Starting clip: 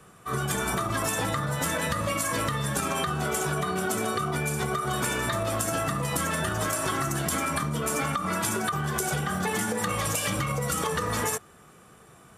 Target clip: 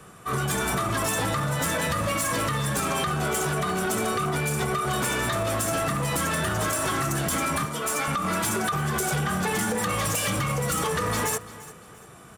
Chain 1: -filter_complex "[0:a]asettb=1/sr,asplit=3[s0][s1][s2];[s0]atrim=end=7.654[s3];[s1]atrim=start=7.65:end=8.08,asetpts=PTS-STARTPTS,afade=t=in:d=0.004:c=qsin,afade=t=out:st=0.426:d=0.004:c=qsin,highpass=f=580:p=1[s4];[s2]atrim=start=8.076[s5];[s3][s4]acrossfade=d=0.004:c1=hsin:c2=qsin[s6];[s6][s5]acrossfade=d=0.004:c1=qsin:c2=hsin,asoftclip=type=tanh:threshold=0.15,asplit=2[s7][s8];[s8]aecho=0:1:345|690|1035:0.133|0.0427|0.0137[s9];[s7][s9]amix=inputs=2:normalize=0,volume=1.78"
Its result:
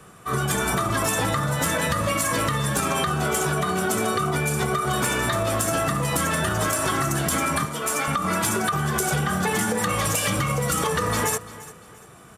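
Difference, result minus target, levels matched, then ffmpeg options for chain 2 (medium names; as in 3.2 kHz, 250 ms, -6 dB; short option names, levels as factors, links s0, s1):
saturation: distortion -13 dB
-filter_complex "[0:a]asettb=1/sr,asplit=3[s0][s1][s2];[s0]atrim=end=7.654[s3];[s1]atrim=start=7.65:end=8.08,asetpts=PTS-STARTPTS,afade=t=in:d=0.004:c=qsin,afade=t=out:st=0.426:d=0.004:c=qsin,highpass=f=580:p=1[s4];[s2]atrim=start=8.076[s5];[s3][s4]acrossfade=d=0.004:c1=hsin:c2=qsin[s6];[s6][s5]acrossfade=d=0.004:c1=qsin:c2=hsin,asoftclip=type=tanh:threshold=0.0501,asplit=2[s7][s8];[s8]aecho=0:1:345|690|1035:0.133|0.0427|0.0137[s9];[s7][s9]amix=inputs=2:normalize=0,volume=1.78"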